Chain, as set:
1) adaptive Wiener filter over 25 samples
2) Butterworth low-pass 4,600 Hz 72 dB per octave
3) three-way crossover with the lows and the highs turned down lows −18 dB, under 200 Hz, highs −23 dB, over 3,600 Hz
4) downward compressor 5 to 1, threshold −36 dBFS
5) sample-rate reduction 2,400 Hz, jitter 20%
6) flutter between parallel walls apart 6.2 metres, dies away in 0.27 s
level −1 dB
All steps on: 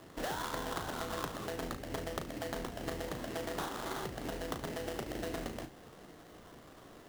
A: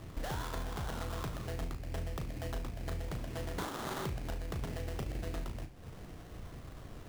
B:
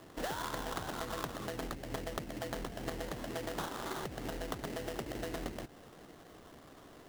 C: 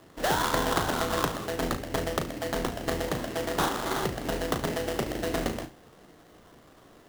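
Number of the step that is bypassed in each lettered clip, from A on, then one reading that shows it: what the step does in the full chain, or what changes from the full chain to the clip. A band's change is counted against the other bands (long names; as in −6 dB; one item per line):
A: 3, 125 Hz band +10.5 dB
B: 6, echo-to-direct ratio −7.5 dB to none audible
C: 4, average gain reduction 7.0 dB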